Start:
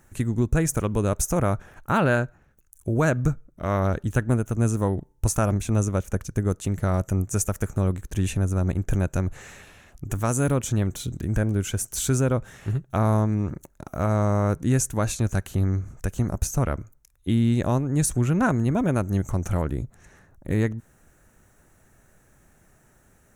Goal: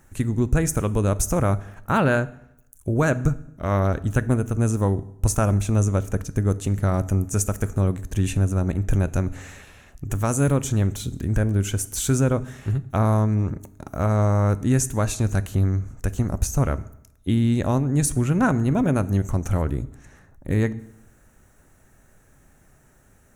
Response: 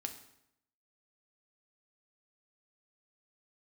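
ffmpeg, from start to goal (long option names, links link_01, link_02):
-filter_complex "[0:a]asplit=2[link_01][link_02];[1:a]atrim=start_sample=2205,lowshelf=frequency=120:gain=6.5[link_03];[link_02][link_03]afir=irnorm=-1:irlink=0,volume=-3.5dB[link_04];[link_01][link_04]amix=inputs=2:normalize=0,volume=-2.5dB"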